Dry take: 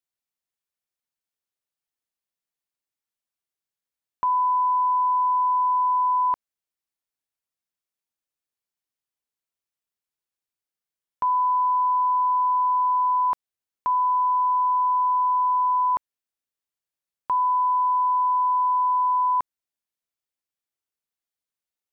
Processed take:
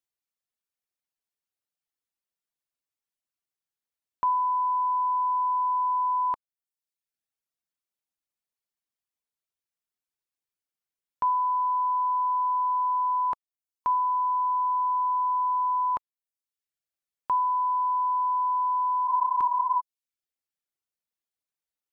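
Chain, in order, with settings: reverb removal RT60 0.73 s; spectral replace 19.11–19.78 s, 460–1100 Hz before; trim -1.5 dB

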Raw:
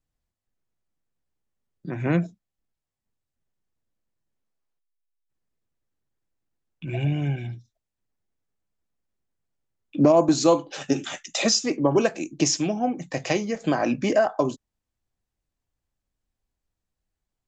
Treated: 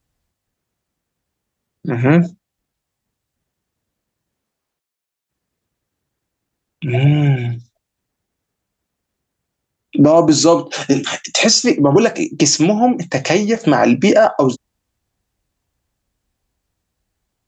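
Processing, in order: high-pass 42 Hz; loudness maximiser +13 dB; trim -1 dB

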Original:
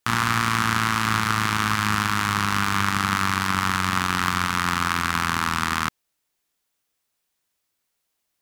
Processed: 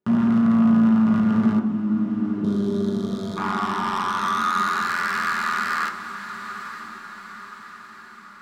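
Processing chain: band-pass sweep 250 Hz -> 1.7 kHz, 2.09–4.97 s; in parallel at +2.5 dB: peak limiter -22.5 dBFS, peak gain reduction 11 dB; 1.59–2.44 s: on the sum: cascade formant filter u; saturation -26 dBFS, distortion -6 dB; 1.68–3.37 s: time-frequency box 710–3100 Hz -19 dB; echo that smears into a reverb 918 ms, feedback 54%, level -11 dB; on a send at -1 dB: reverberation RT60 0.35 s, pre-delay 3 ms; on the sum: trim +5 dB

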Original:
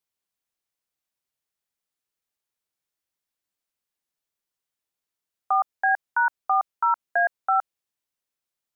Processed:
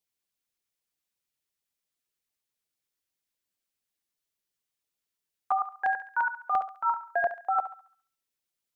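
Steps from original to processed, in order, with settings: LFO notch saw down 8.7 Hz 530–1700 Hz; thinning echo 69 ms, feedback 46%, high-pass 780 Hz, level -9.5 dB; dynamic bell 1.7 kHz, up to -5 dB, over -46 dBFS, Q 1.6

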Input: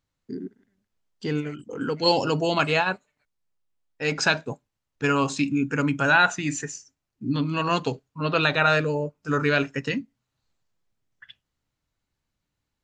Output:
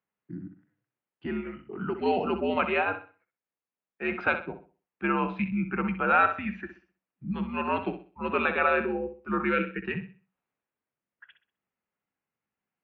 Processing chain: time-frequency box 9.53–9.85 s, 660–1400 Hz -13 dB; mistuned SSB -85 Hz 240–2800 Hz; flutter echo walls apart 10.9 m, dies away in 0.37 s; trim -3.5 dB

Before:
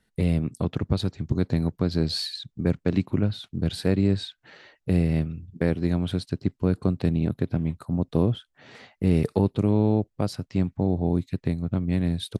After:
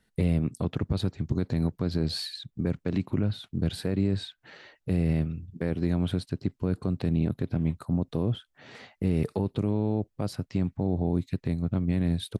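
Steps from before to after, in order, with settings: peak limiter -16.5 dBFS, peak gain reduction 8.5 dB; dynamic bell 5.3 kHz, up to -5 dB, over -47 dBFS, Q 0.78

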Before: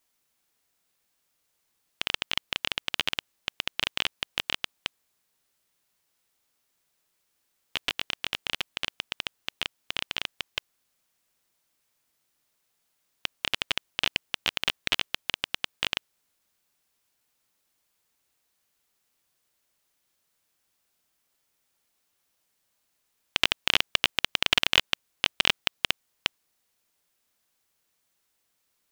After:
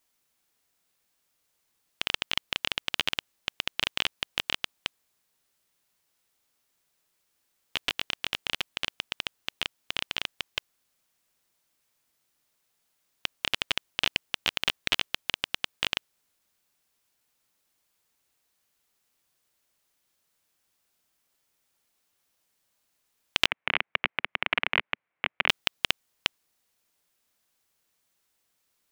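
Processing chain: 23.46–25.49 s: cabinet simulation 140–2300 Hz, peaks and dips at 240 Hz -9 dB, 390 Hz -6 dB, 2.2 kHz +5 dB

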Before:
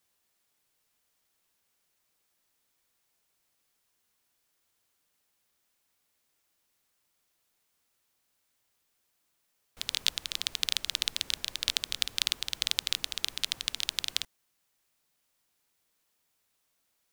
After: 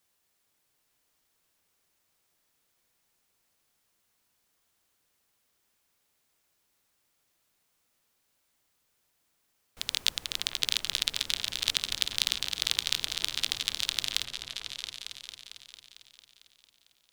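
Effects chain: delay with an opening low-pass 225 ms, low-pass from 400 Hz, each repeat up 2 oct, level -3 dB; trim +1 dB

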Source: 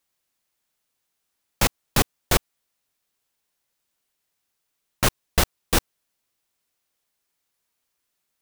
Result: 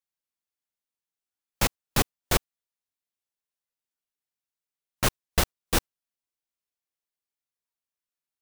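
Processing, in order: spectral noise reduction 7 dB; upward expansion 1.5:1, over -30 dBFS; trim -2.5 dB

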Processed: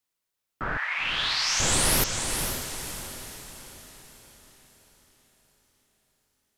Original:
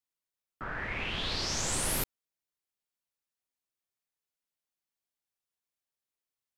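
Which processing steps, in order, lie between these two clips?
0.77–1.60 s: high-pass 910 Hz 24 dB/octave; on a send: echo that smears into a reverb 500 ms, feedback 48%, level -6 dB; on the sum: trim +8 dB

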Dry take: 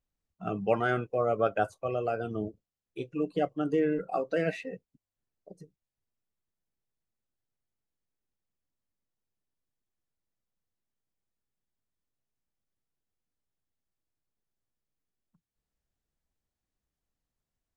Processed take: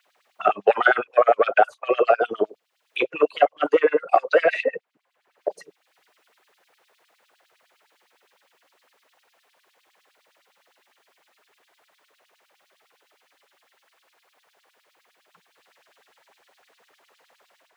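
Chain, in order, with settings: level rider gain up to 5 dB; in parallel at -0.5 dB: peak limiter -15 dBFS, peak gain reduction 7.5 dB; on the sum: saturation -8 dBFS, distortion -22 dB; three-band isolator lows -12 dB, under 540 Hz, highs -12 dB, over 3.4 kHz; LFO high-pass sine 9.8 Hz 410–4300 Hz; bass shelf 340 Hz +6.5 dB; three bands compressed up and down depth 70%; trim +2.5 dB

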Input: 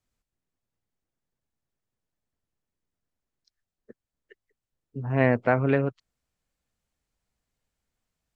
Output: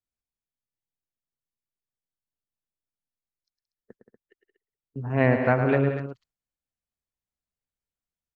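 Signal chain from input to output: gate -49 dBFS, range -15 dB; loudspeakers at several distances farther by 37 m -8 dB, 60 m -11 dB, 82 m -11 dB

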